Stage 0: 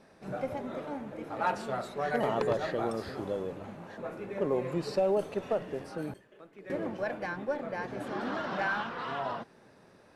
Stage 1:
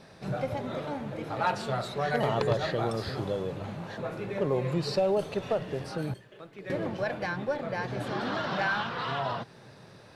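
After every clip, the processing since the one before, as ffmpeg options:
-filter_complex "[0:a]equalizer=f=125:t=o:w=1:g=10,equalizer=f=250:t=o:w=1:g=-4,equalizer=f=4000:t=o:w=1:g=7,asplit=2[s0][s1];[s1]acompressor=threshold=0.0112:ratio=6,volume=0.891[s2];[s0][s2]amix=inputs=2:normalize=0"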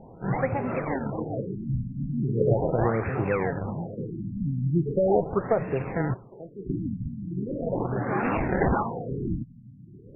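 -af "acrusher=samples=22:mix=1:aa=0.000001:lfo=1:lforange=35.2:lforate=1.2,bandreject=f=600:w=12,afftfilt=real='re*lt(b*sr/1024,270*pow(2800/270,0.5+0.5*sin(2*PI*0.39*pts/sr)))':imag='im*lt(b*sr/1024,270*pow(2800/270,0.5+0.5*sin(2*PI*0.39*pts/sr)))':win_size=1024:overlap=0.75,volume=2.11"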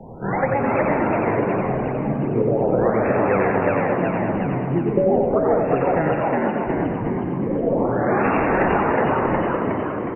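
-filter_complex "[0:a]asplit=2[s0][s1];[s1]asplit=6[s2][s3][s4][s5][s6][s7];[s2]adelay=364,afreqshift=79,volume=0.668[s8];[s3]adelay=728,afreqshift=158,volume=0.327[s9];[s4]adelay=1092,afreqshift=237,volume=0.16[s10];[s5]adelay=1456,afreqshift=316,volume=0.0785[s11];[s6]adelay=1820,afreqshift=395,volume=0.0385[s12];[s7]adelay=2184,afreqshift=474,volume=0.0188[s13];[s8][s9][s10][s11][s12][s13]amix=inputs=6:normalize=0[s14];[s0][s14]amix=inputs=2:normalize=0,acrossover=split=120|280[s15][s16][s17];[s15]acompressor=threshold=0.00562:ratio=4[s18];[s16]acompressor=threshold=0.01:ratio=4[s19];[s17]acompressor=threshold=0.0501:ratio=4[s20];[s18][s19][s20]amix=inputs=3:normalize=0,asplit=2[s21][s22];[s22]aecho=0:1:90|207|359.1|556.8|813.9:0.631|0.398|0.251|0.158|0.1[s23];[s21][s23]amix=inputs=2:normalize=0,volume=2.51"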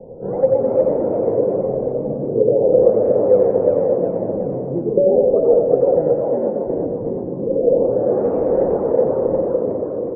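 -af "lowpass=f=510:t=q:w=6.2,volume=0.531"

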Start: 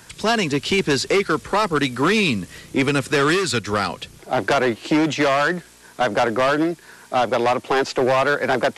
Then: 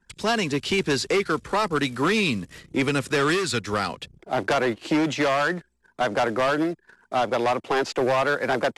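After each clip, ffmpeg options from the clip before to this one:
-af "anlmdn=0.398,volume=0.631"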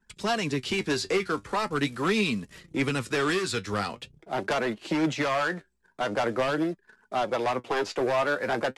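-af "flanger=delay=4.6:depth=6.1:regen=55:speed=0.43:shape=sinusoidal"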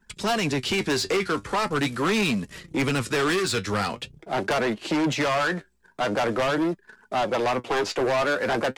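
-af "asoftclip=type=tanh:threshold=0.0473,volume=2.24"

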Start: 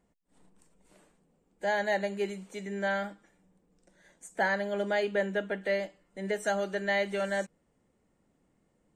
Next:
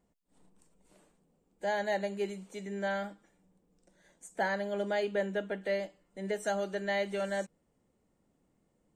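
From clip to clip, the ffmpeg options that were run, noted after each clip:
-af "equalizer=f=1800:w=1.3:g=-3.5,volume=0.794"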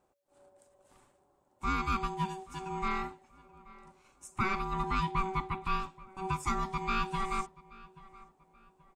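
-filter_complex "[0:a]aeval=exprs='val(0)*sin(2*PI*570*n/s)':c=same,asplit=2[s0][s1];[s1]adelay=830,lowpass=f=2900:p=1,volume=0.0944,asplit=2[s2][s3];[s3]adelay=830,lowpass=f=2900:p=1,volume=0.38,asplit=2[s4][s5];[s5]adelay=830,lowpass=f=2900:p=1,volume=0.38[s6];[s0][s2][s4][s6]amix=inputs=4:normalize=0,volume=1.5"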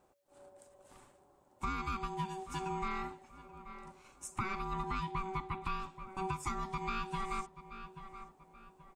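-af "acompressor=threshold=0.0126:ratio=6,volume=1.58"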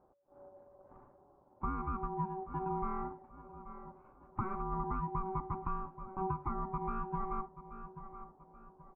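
-af "lowpass=f=1200:w=0.5412,lowpass=f=1200:w=1.3066,volume=1.26"

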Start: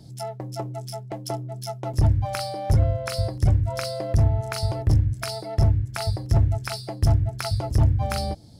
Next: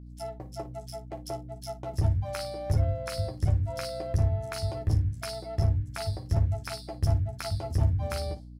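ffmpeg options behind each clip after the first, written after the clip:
-af "agate=range=0.0224:threshold=0.0224:ratio=3:detection=peak,aecho=1:1:12|56:0.562|0.2,aeval=exprs='val(0)+0.0158*(sin(2*PI*60*n/s)+sin(2*PI*2*60*n/s)/2+sin(2*PI*3*60*n/s)/3+sin(2*PI*4*60*n/s)/4+sin(2*PI*5*60*n/s)/5)':c=same,volume=0.422"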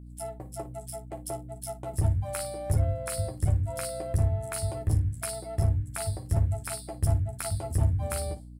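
-af "highshelf=f=7000:t=q:w=3:g=7"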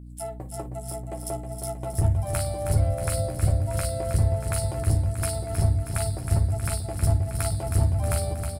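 -af "aecho=1:1:317|634|951|1268|1585|1902|2219:0.422|0.24|0.137|0.0781|0.0445|0.0254|0.0145,volume=1.41"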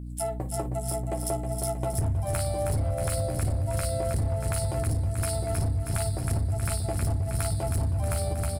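-filter_complex "[0:a]asplit=2[s0][s1];[s1]alimiter=limit=0.0944:level=0:latency=1,volume=0.75[s2];[s0][s2]amix=inputs=2:normalize=0,asoftclip=type=hard:threshold=0.168,acompressor=threshold=0.0631:ratio=6"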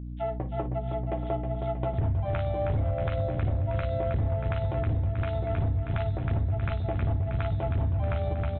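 -af "aresample=8000,aresample=44100"

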